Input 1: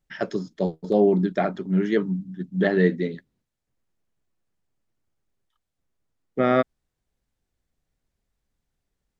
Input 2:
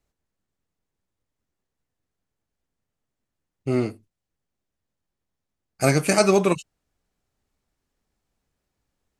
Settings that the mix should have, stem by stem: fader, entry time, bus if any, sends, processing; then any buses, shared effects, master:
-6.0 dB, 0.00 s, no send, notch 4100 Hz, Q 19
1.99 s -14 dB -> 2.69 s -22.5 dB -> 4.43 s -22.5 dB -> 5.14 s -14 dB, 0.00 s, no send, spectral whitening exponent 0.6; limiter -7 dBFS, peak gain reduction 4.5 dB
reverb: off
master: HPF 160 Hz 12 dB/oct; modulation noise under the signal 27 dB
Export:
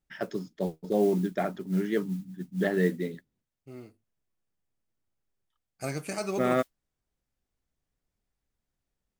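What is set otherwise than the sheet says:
stem 2: missing spectral whitening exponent 0.6; master: missing HPF 160 Hz 12 dB/oct

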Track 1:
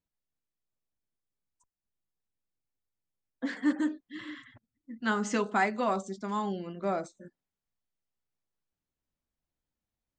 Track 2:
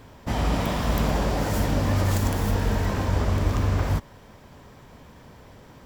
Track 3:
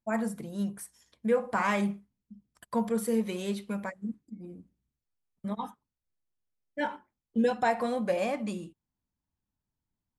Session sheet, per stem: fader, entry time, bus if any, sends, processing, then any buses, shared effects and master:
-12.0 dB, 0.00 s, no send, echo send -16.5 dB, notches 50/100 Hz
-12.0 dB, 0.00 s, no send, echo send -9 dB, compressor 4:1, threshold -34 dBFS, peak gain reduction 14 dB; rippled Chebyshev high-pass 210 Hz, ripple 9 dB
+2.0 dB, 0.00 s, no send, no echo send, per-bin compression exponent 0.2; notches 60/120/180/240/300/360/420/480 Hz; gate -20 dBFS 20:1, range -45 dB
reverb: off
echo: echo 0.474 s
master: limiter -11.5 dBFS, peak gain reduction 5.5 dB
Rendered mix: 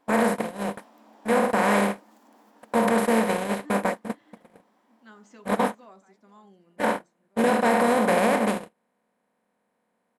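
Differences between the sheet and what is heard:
stem 1 -12.0 dB -> -21.0 dB; stem 3: missing notches 60/120/180/240/300/360/420/480 Hz

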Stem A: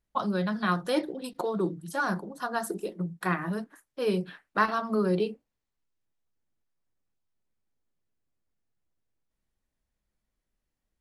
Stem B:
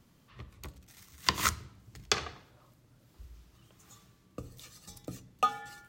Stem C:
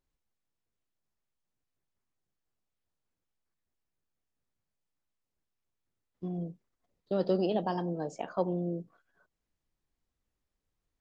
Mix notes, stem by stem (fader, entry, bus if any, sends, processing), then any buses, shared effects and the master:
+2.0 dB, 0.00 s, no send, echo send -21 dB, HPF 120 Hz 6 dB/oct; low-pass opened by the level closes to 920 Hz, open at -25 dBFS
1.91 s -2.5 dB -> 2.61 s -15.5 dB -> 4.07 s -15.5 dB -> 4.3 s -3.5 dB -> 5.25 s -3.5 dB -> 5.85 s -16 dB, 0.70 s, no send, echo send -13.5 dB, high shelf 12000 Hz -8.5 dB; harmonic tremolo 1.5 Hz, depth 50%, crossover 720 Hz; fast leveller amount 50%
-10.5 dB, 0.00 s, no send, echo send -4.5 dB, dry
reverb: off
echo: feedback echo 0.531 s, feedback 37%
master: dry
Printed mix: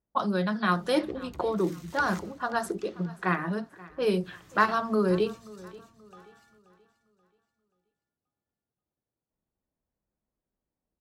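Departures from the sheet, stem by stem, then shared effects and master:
stem B -2.5 dB -> -10.5 dB; stem C: muted

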